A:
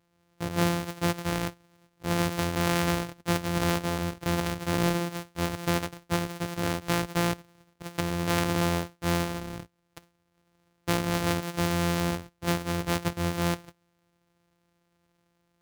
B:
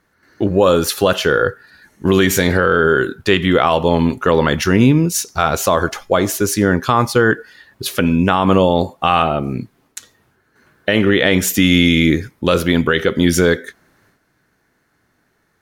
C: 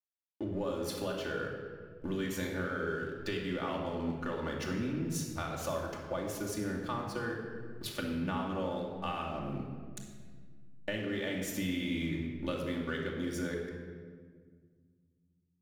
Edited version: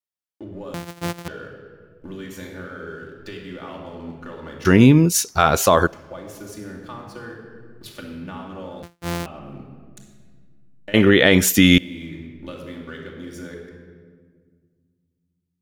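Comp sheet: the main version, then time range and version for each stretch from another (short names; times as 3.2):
C
0.74–1.28 from A
4.65–5.87 from B
8.83–9.26 from A
10.94–11.78 from B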